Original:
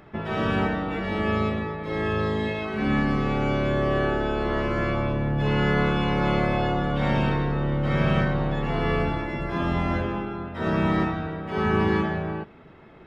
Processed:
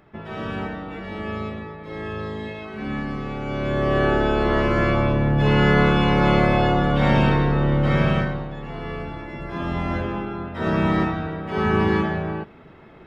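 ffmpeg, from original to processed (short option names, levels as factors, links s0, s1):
-af "volume=5.62,afade=t=in:st=3.45:d=0.71:silence=0.298538,afade=t=out:st=7.82:d=0.66:silence=0.237137,afade=t=in:st=9.07:d=1.33:silence=0.334965"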